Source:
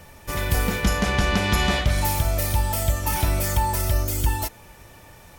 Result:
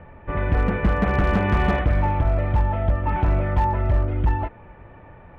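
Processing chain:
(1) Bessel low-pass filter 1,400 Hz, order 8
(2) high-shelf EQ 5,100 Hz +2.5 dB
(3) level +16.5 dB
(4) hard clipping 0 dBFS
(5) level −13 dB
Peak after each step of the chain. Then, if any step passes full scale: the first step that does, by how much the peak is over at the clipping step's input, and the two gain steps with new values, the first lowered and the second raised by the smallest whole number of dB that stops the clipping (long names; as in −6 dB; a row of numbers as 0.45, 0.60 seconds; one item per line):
−10.0, −10.0, +6.5, 0.0, −13.0 dBFS
step 3, 6.5 dB
step 3 +9.5 dB, step 5 −6 dB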